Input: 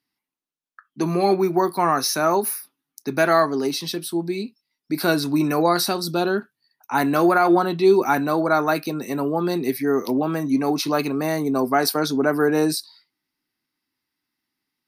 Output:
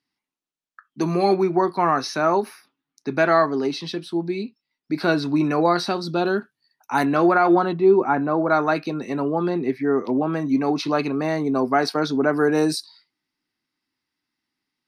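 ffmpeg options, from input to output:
-af "asetnsamples=n=441:p=0,asendcmd='1.43 lowpass f 3800;6.26 lowpass f 9200;7.05 lowpass f 3500;7.73 lowpass f 1500;8.5 lowpass f 3900;9.49 lowpass f 2200;10.33 lowpass f 4100;12.37 lowpass f 8300',lowpass=8.1k"

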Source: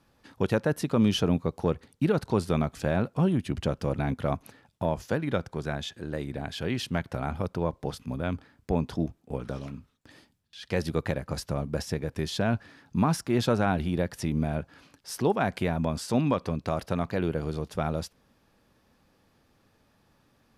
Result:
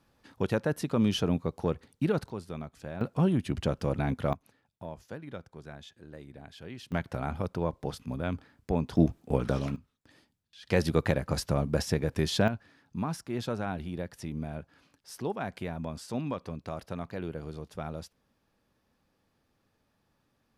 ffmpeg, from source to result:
-af "asetnsamples=n=441:p=0,asendcmd='2.29 volume volume -13dB;3.01 volume volume -1dB;4.33 volume volume -13.5dB;6.92 volume volume -2dB;8.97 volume volume 6dB;9.76 volume volume -7dB;10.67 volume volume 2.5dB;12.48 volume volume -8.5dB',volume=-3dB"

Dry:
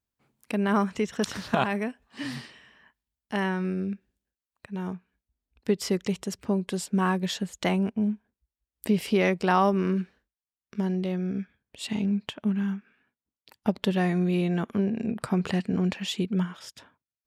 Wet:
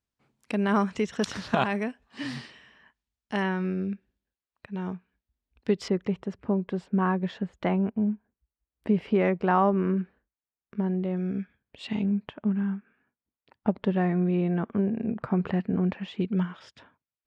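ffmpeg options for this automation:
-af "asetnsamples=n=441:p=0,asendcmd='3.42 lowpass f 4200;5.88 lowpass f 1700;11.17 lowpass f 3200;12.03 lowpass f 1700;16.21 lowpass f 3100',lowpass=7.2k"

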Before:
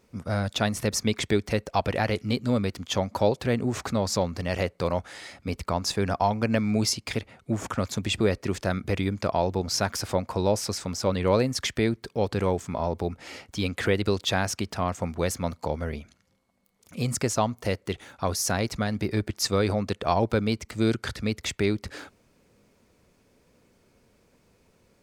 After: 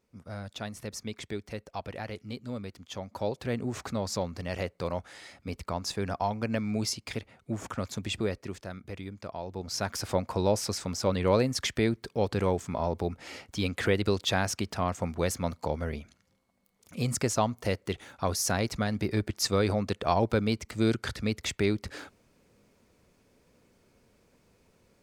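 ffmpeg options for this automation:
-af "volume=5.5dB,afade=t=in:st=3:d=0.56:silence=0.473151,afade=t=out:st=8.15:d=0.53:silence=0.421697,afade=t=in:st=9.45:d=0.71:silence=0.266073"

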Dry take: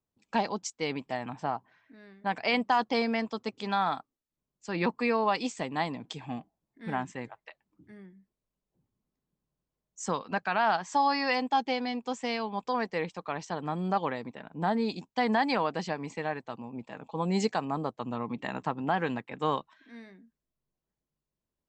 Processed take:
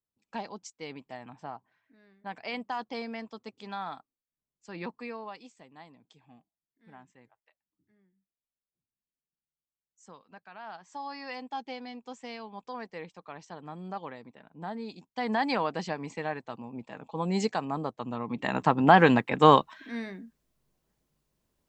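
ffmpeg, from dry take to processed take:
-af "volume=22.5dB,afade=t=out:st=4.78:d=0.72:silence=0.281838,afade=t=in:st=10.52:d=1.14:silence=0.298538,afade=t=in:st=15.05:d=0.41:silence=0.354813,afade=t=in:st=18.26:d=0.73:silence=0.251189"

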